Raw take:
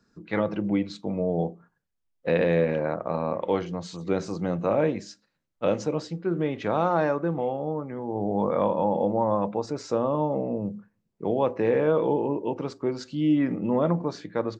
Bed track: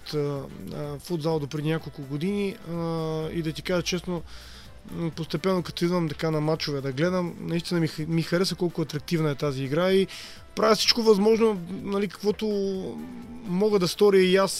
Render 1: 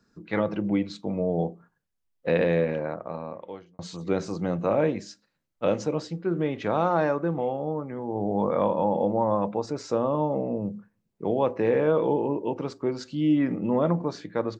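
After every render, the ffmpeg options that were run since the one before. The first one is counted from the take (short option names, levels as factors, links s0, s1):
-filter_complex "[0:a]asplit=2[s0][s1];[s0]atrim=end=3.79,asetpts=PTS-STARTPTS,afade=t=out:st=2.41:d=1.38[s2];[s1]atrim=start=3.79,asetpts=PTS-STARTPTS,afade=t=in:d=0.004:c=hsin[s3];[s2][s3]concat=n=2:v=0:a=1"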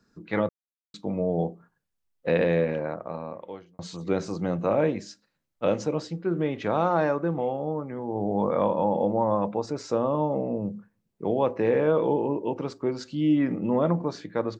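-filter_complex "[0:a]asplit=3[s0][s1][s2];[s0]atrim=end=0.49,asetpts=PTS-STARTPTS,afade=t=out:st=0.486:d=0.004:c=hsin[s3];[s1]atrim=start=0.49:end=0.94,asetpts=PTS-STARTPTS,volume=0[s4];[s2]atrim=start=0.94,asetpts=PTS-STARTPTS,afade=t=in:d=0.004:c=hsin[s5];[s3][s4][s5]concat=n=3:v=0:a=1"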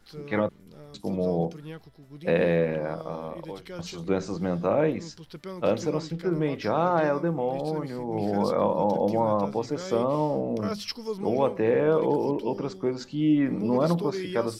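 -filter_complex "[1:a]volume=0.2[s0];[0:a][s0]amix=inputs=2:normalize=0"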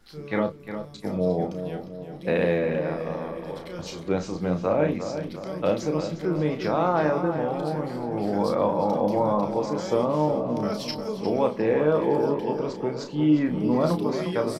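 -filter_complex "[0:a]asplit=2[s0][s1];[s1]adelay=33,volume=0.447[s2];[s0][s2]amix=inputs=2:normalize=0,asplit=2[s3][s4];[s4]adelay=355,lowpass=f=3900:p=1,volume=0.355,asplit=2[s5][s6];[s6]adelay=355,lowpass=f=3900:p=1,volume=0.53,asplit=2[s7][s8];[s8]adelay=355,lowpass=f=3900:p=1,volume=0.53,asplit=2[s9][s10];[s10]adelay=355,lowpass=f=3900:p=1,volume=0.53,asplit=2[s11][s12];[s12]adelay=355,lowpass=f=3900:p=1,volume=0.53,asplit=2[s13][s14];[s14]adelay=355,lowpass=f=3900:p=1,volume=0.53[s15];[s3][s5][s7][s9][s11][s13][s15]amix=inputs=7:normalize=0"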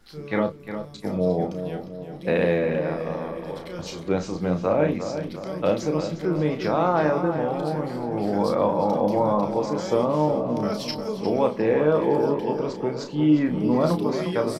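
-af "volume=1.19"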